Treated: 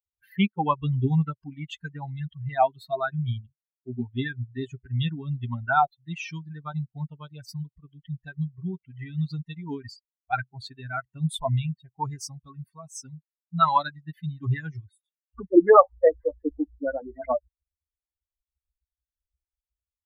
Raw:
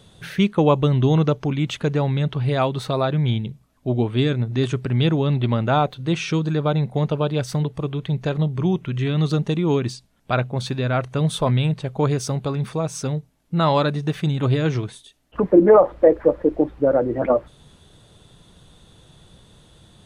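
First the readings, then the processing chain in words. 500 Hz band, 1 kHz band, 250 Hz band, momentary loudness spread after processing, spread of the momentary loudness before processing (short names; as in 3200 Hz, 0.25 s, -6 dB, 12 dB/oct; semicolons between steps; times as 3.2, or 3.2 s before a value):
-7.0 dB, 0.0 dB, -8.5 dB, 18 LU, 8 LU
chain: per-bin expansion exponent 3; LFO bell 3.4 Hz 710–1600 Hz +14 dB; gain -1.5 dB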